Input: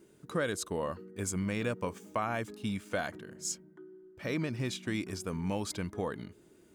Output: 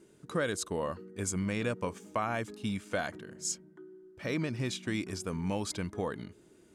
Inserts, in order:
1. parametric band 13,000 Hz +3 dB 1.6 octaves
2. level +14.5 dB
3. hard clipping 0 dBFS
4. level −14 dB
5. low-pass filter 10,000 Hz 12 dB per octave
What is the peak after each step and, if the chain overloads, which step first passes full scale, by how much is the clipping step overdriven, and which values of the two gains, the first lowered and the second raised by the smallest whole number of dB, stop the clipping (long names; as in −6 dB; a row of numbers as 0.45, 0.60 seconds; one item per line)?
−19.5, −5.0, −5.0, −19.0, −19.0 dBFS
no step passes full scale